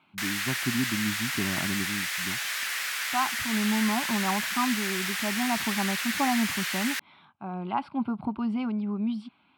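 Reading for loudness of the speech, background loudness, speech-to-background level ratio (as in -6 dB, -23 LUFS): -31.0 LUFS, -29.0 LUFS, -2.0 dB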